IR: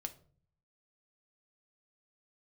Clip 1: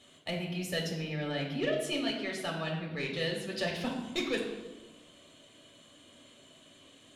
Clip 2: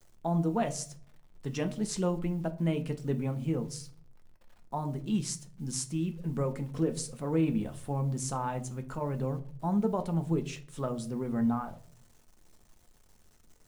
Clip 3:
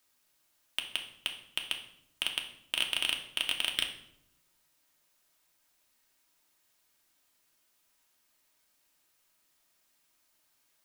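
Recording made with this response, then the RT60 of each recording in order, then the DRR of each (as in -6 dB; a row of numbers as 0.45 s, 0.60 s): 2; 1.2 s, 0.50 s, 0.80 s; -1.0 dB, 6.5 dB, 1.5 dB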